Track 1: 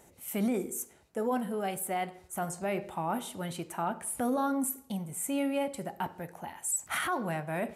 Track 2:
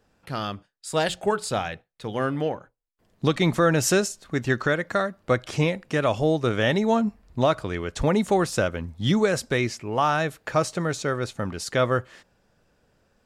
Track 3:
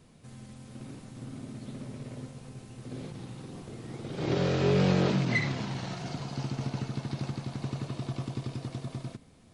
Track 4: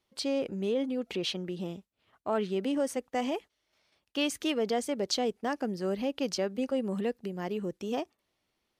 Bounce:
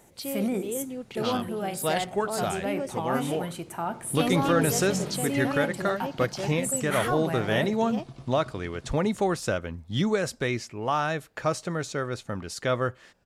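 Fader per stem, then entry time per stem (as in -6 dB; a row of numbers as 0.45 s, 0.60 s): +1.5 dB, -4.0 dB, -9.5 dB, -3.5 dB; 0.00 s, 0.90 s, 0.00 s, 0.00 s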